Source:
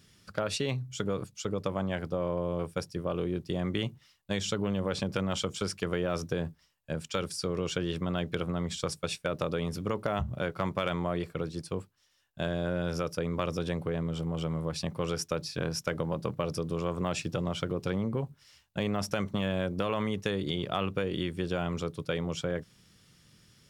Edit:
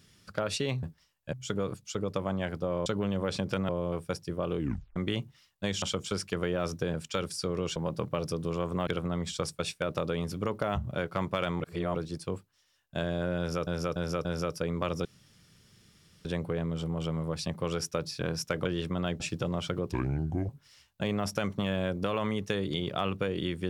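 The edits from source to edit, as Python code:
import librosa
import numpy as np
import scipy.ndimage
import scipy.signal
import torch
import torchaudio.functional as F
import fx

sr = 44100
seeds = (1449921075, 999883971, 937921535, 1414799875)

y = fx.edit(x, sr, fx.tape_stop(start_s=3.25, length_s=0.38),
    fx.move(start_s=4.49, length_s=0.83, to_s=2.36),
    fx.move(start_s=6.44, length_s=0.5, to_s=0.83),
    fx.swap(start_s=7.76, length_s=0.55, other_s=16.02, other_length_s=1.11),
    fx.reverse_span(start_s=11.04, length_s=0.35),
    fx.repeat(start_s=12.82, length_s=0.29, count=4),
    fx.insert_room_tone(at_s=13.62, length_s=1.2),
    fx.speed_span(start_s=17.85, length_s=0.4, speed=0.7), tone=tone)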